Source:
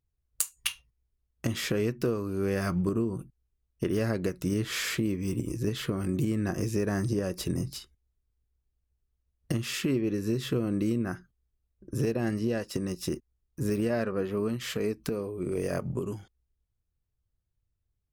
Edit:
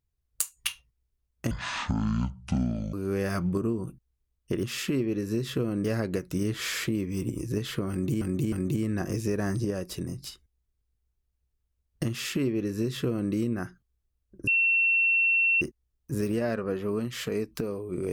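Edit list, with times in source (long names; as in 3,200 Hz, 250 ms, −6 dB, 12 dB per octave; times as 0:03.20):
0:01.51–0:02.25: play speed 52%
0:06.01–0:06.32: repeat, 3 plays
0:07.08–0:07.71: fade out, to −6 dB
0:09.59–0:10.80: duplicate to 0:03.95
0:11.96–0:13.10: beep over 2,710 Hz −20 dBFS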